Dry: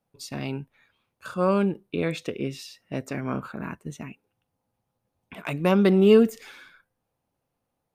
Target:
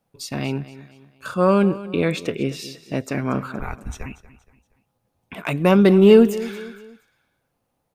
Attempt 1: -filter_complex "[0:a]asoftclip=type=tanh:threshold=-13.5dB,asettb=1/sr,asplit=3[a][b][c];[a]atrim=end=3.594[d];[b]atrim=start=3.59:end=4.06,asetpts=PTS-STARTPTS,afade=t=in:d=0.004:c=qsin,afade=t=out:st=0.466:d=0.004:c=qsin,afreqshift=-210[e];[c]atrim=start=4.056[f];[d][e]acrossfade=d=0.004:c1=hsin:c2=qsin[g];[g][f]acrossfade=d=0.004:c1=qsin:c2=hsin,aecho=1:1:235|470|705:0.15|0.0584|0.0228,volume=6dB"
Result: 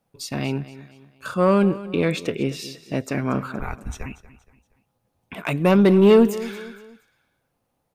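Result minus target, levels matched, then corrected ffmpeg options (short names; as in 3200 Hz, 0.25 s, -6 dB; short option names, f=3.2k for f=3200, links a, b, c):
soft clip: distortion +9 dB
-filter_complex "[0:a]asoftclip=type=tanh:threshold=-7dB,asettb=1/sr,asplit=3[a][b][c];[a]atrim=end=3.594[d];[b]atrim=start=3.59:end=4.06,asetpts=PTS-STARTPTS,afade=t=in:d=0.004:c=qsin,afade=t=out:st=0.466:d=0.004:c=qsin,afreqshift=-210[e];[c]atrim=start=4.056[f];[d][e]acrossfade=d=0.004:c1=hsin:c2=qsin[g];[g][f]acrossfade=d=0.004:c1=qsin:c2=hsin,aecho=1:1:235|470|705:0.15|0.0584|0.0228,volume=6dB"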